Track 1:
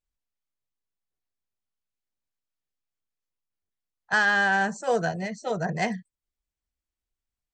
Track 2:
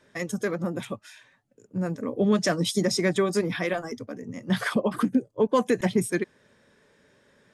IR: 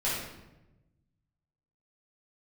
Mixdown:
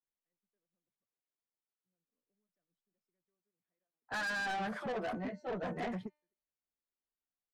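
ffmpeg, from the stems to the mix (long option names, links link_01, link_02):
-filter_complex "[0:a]acrossover=split=180 4000:gain=0.112 1 0.0708[link_01][link_02][link_03];[link_01][link_02][link_03]amix=inputs=3:normalize=0,bandreject=frequency=300:width_type=h:width=4,bandreject=frequency=600:width_type=h:width=4,bandreject=frequency=900:width_type=h:width=4,bandreject=frequency=1200:width_type=h:width=4,bandreject=frequency=1500:width_type=h:width=4,bandreject=frequency=1800:width_type=h:width=4,bandreject=frequency=2100:width_type=h:width=4,bandreject=frequency=2400:width_type=h:width=4,bandreject=frequency=2700:width_type=h:width=4,bandreject=frequency=3000:width_type=h:width=4,bandreject=frequency=3300:width_type=h:width=4,bandreject=frequency=3600:width_type=h:width=4,bandreject=frequency=3900:width_type=h:width=4,bandreject=frequency=4200:width_type=h:width=4,bandreject=frequency=4500:width_type=h:width=4,bandreject=frequency=4800:width_type=h:width=4,bandreject=frequency=5100:width_type=h:width=4,bandreject=frequency=5400:width_type=h:width=4,bandreject=frequency=5700:width_type=h:width=4,bandreject=frequency=6000:width_type=h:width=4,bandreject=frequency=6300:width_type=h:width=4,bandreject=frequency=6600:width_type=h:width=4,bandreject=frequency=6900:width_type=h:width=4,bandreject=frequency=7200:width_type=h:width=4,bandreject=frequency=7500:width_type=h:width=4,bandreject=frequency=7800:width_type=h:width=4,bandreject=frequency=8100:width_type=h:width=4,bandreject=frequency=8400:width_type=h:width=4,bandreject=frequency=8700:width_type=h:width=4,bandreject=frequency=9000:width_type=h:width=4,bandreject=frequency=9300:width_type=h:width=4,bandreject=frequency=9600:width_type=h:width=4,bandreject=frequency=9900:width_type=h:width=4,bandreject=frequency=10200:width_type=h:width=4,bandreject=frequency=10500:width_type=h:width=4,bandreject=frequency=10800:width_type=h:width=4,asplit=2[link_04][link_05];[link_05]adelay=11.4,afreqshift=-0.42[link_06];[link_04][link_06]amix=inputs=2:normalize=1,volume=-1dB,asplit=2[link_07][link_08];[1:a]alimiter=limit=-16.5dB:level=0:latency=1:release=165,adelay=100,volume=-12dB[link_09];[link_08]apad=whole_len=336589[link_10];[link_09][link_10]sidechaingate=range=-52dB:threshold=-48dB:ratio=16:detection=peak[link_11];[link_07][link_11]amix=inputs=2:normalize=0,highshelf=frequency=2300:gain=-11,asoftclip=type=tanh:threshold=-34dB"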